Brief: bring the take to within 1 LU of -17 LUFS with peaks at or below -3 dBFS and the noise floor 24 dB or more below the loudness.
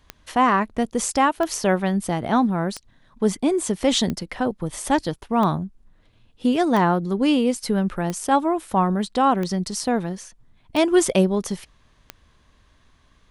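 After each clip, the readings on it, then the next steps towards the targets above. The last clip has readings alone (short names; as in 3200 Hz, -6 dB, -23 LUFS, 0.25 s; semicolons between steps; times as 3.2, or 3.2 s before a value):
clicks 10; loudness -22.0 LUFS; peak -5.5 dBFS; loudness target -17.0 LUFS
-> de-click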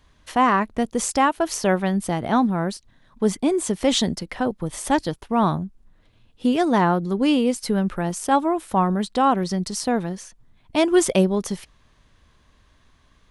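clicks 0; loudness -22.0 LUFS; peak -5.5 dBFS; loudness target -17.0 LUFS
-> gain +5 dB; limiter -3 dBFS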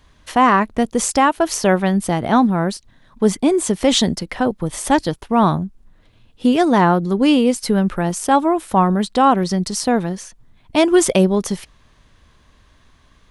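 loudness -17.0 LUFS; peak -3.0 dBFS; noise floor -54 dBFS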